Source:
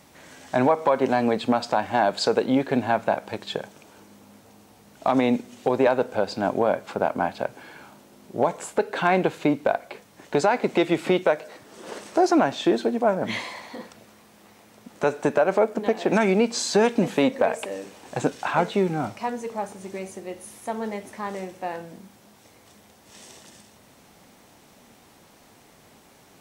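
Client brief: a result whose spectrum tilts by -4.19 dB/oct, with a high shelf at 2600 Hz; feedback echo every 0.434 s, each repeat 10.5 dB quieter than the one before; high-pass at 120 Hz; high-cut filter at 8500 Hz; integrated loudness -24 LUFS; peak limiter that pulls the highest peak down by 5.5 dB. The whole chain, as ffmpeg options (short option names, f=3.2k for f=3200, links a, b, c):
-af "highpass=120,lowpass=8.5k,highshelf=f=2.6k:g=5,alimiter=limit=-12.5dB:level=0:latency=1,aecho=1:1:434|868|1302:0.299|0.0896|0.0269,volume=1.5dB"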